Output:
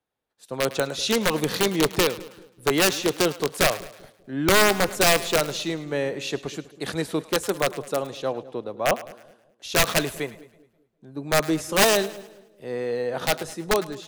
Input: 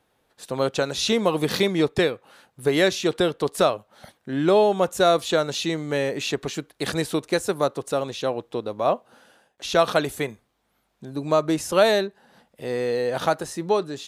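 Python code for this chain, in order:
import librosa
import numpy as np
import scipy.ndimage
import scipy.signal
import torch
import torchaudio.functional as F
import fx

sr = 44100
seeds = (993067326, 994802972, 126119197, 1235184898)

y = (np.mod(10.0 ** (11.5 / 20.0) * x + 1.0, 2.0) - 1.0) / 10.0 ** (11.5 / 20.0)
y = fx.echo_split(y, sr, split_hz=560.0, low_ms=197, high_ms=106, feedback_pct=52, wet_db=-15.5)
y = fx.band_widen(y, sr, depth_pct=40)
y = y * librosa.db_to_amplitude(-1.0)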